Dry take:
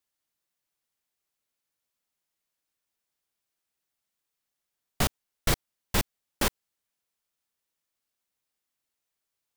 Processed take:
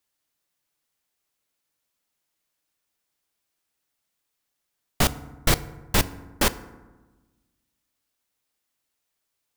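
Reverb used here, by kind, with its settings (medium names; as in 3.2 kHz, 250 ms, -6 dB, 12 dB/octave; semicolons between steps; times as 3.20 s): FDN reverb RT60 1.2 s, low-frequency decay 1.35×, high-frequency decay 0.45×, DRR 14 dB; trim +5 dB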